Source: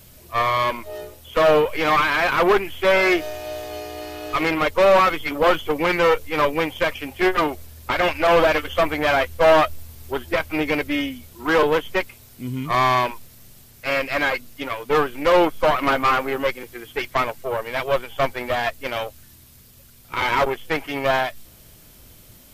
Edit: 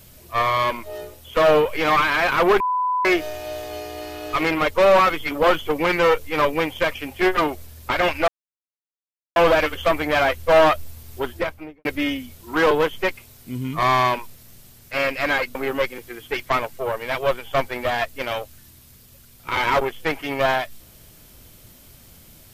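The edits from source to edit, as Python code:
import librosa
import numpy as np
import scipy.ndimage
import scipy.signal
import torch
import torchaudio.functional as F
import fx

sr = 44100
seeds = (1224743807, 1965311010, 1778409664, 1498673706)

y = fx.studio_fade_out(x, sr, start_s=10.17, length_s=0.6)
y = fx.edit(y, sr, fx.bleep(start_s=2.6, length_s=0.45, hz=1000.0, db=-18.5),
    fx.insert_silence(at_s=8.28, length_s=1.08),
    fx.cut(start_s=14.47, length_s=1.73), tone=tone)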